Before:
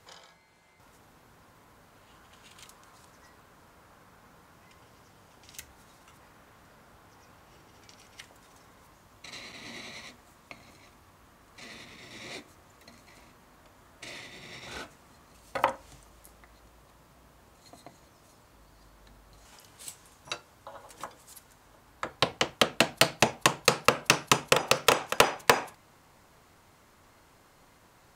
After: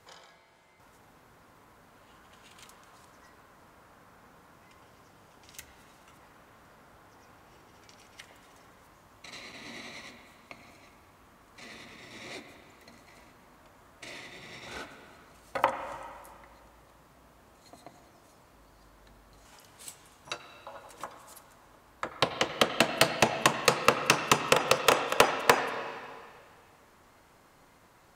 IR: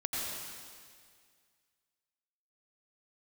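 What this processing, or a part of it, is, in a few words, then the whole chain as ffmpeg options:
filtered reverb send: -filter_complex "[0:a]asplit=2[link_01][link_02];[link_02]highpass=160,lowpass=3000[link_03];[1:a]atrim=start_sample=2205[link_04];[link_03][link_04]afir=irnorm=-1:irlink=0,volume=-10dB[link_05];[link_01][link_05]amix=inputs=2:normalize=0,volume=-2dB"

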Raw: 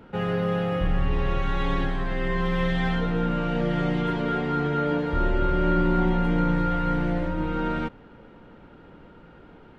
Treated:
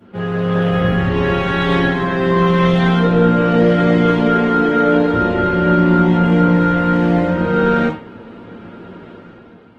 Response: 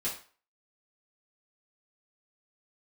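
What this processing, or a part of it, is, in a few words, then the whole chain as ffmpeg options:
far-field microphone of a smart speaker: -filter_complex "[1:a]atrim=start_sample=2205[link_01];[0:a][link_01]afir=irnorm=-1:irlink=0,highpass=86,dynaudnorm=framelen=100:gausssize=11:maxgain=9dB" -ar 48000 -c:a libopus -b:a 16k

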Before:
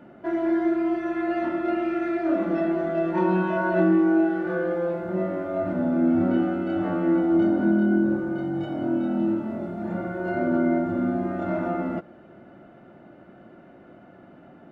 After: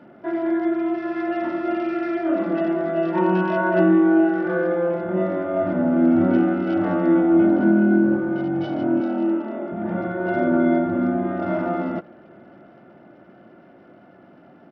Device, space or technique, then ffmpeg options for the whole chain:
Bluetooth headset: -filter_complex "[0:a]asplit=3[link_01][link_02][link_03];[link_01]afade=type=out:start_time=6.14:duration=0.02[link_04];[link_02]asplit=2[link_05][link_06];[link_06]adelay=49,volume=-11dB[link_07];[link_05][link_07]amix=inputs=2:normalize=0,afade=type=in:start_time=6.14:duration=0.02,afade=type=out:start_time=7.08:duration=0.02[link_08];[link_03]afade=type=in:start_time=7.08:duration=0.02[link_09];[link_04][link_08][link_09]amix=inputs=3:normalize=0,asettb=1/sr,asplit=3[link_10][link_11][link_12];[link_10]atrim=end=9.004[link_13];[link_11]atrim=start=9:end=9.72,asetpts=PTS-STARTPTS,afade=type=in:duration=0.004:curve=qsin,afade=type=out:start_time=0.716:duration=0.004:curve=qsin,highpass=frequency=260:width=0.5412,highpass=frequency=260:width=1.3066[link_14];[link_12]atrim=start=9.716[link_15];[link_13][link_14]acrossfade=duration=0.004:curve1=hsin:curve2=qsin[link_16];[link_16][link_15]acrossfade=duration=0.004:curve1=qsin:curve2=hsin,highpass=frequency=120:poles=1,dynaudnorm=framelen=510:gausssize=13:maxgain=3.5dB,aresample=8000,aresample=44100,volume=1.5dB" -ar 44100 -c:a sbc -b:a 64k

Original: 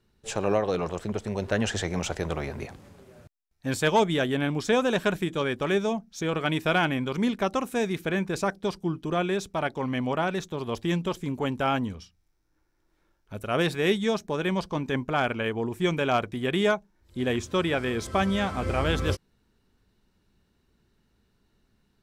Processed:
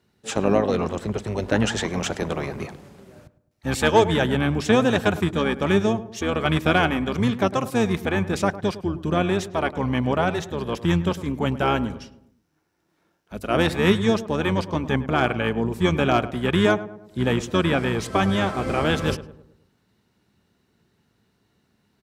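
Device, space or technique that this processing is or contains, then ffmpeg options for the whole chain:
octave pedal: -filter_complex "[0:a]highpass=frequency=110:width=0.5412,highpass=frequency=110:width=1.3066,asplit=2[link_01][link_02];[link_02]asetrate=22050,aresample=44100,atempo=2,volume=-5dB[link_03];[link_01][link_03]amix=inputs=2:normalize=0,asplit=2[link_04][link_05];[link_05]adelay=105,lowpass=frequency=1300:poles=1,volume=-14dB,asplit=2[link_06][link_07];[link_07]adelay=105,lowpass=frequency=1300:poles=1,volume=0.48,asplit=2[link_08][link_09];[link_09]adelay=105,lowpass=frequency=1300:poles=1,volume=0.48,asplit=2[link_10][link_11];[link_11]adelay=105,lowpass=frequency=1300:poles=1,volume=0.48,asplit=2[link_12][link_13];[link_13]adelay=105,lowpass=frequency=1300:poles=1,volume=0.48[link_14];[link_04][link_06][link_08][link_10][link_12][link_14]amix=inputs=6:normalize=0,volume=3.5dB"

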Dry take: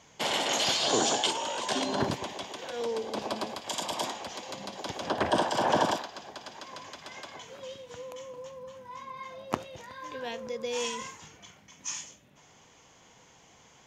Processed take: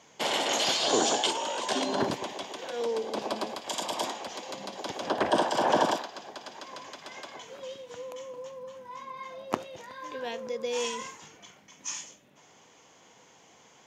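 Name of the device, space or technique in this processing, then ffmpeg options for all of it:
filter by subtraction: -filter_complex "[0:a]asplit=2[link_01][link_02];[link_02]lowpass=340,volume=-1[link_03];[link_01][link_03]amix=inputs=2:normalize=0"

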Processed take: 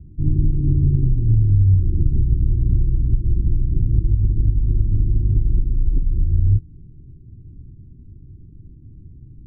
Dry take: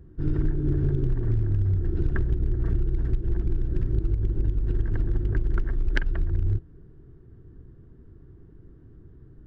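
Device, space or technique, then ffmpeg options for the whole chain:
the neighbour's flat through the wall: -af "lowpass=frequency=270:width=0.5412,lowpass=frequency=270:width=1.3066,equalizer=frequency=100:width_type=o:width=0.77:gain=3.5,volume=6.5dB"

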